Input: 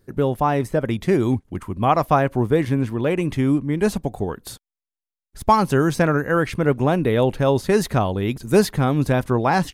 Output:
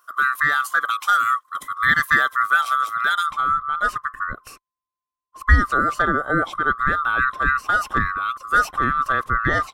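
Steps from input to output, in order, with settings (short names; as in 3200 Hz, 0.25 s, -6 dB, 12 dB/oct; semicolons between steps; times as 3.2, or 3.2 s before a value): band-swap scrambler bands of 1000 Hz; tilt +3 dB/oct, from 3.29 s -2 dB/oct; gain -1.5 dB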